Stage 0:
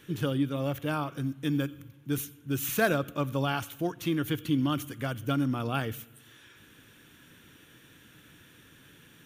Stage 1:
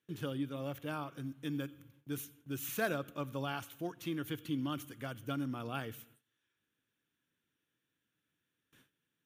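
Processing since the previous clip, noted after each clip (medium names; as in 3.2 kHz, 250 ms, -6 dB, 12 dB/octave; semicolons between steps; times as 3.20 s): gate with hold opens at -42 dBFS; bass shelf 80 Hz -9.5 dB; trim -8.5 dB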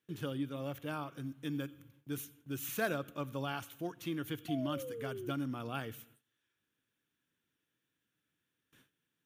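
painted sound fall, 4.48–5.32 s, 340–720 Hz -43 dBFS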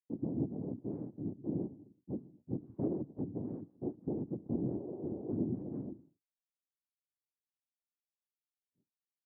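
noise-vocoded speech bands 4; expander -56 dBFS; four-pole ladder low-pass 430 Hz, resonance 40%; trim +8.5 dB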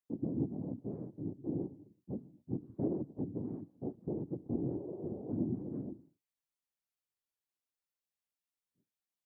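flange 0.33 Hz, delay 0.1 ms, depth 2.5 ms, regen -70%; trim +4 dB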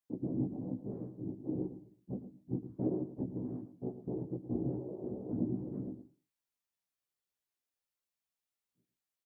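doubling 16 ms -2 dB; delay 111 ms -12.5 dB; trim -2 dB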